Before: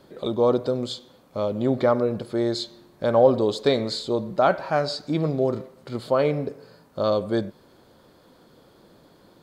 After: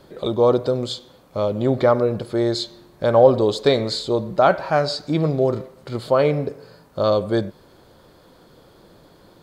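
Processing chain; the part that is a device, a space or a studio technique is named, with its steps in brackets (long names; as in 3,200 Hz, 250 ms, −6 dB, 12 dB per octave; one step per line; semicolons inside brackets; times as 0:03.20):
low shelf boost with a cut just above (low-shelf EQ 67 Hz +7.5 dB; parametric band 240 Hz −4 dB 0.51 octaves)
level +4 dB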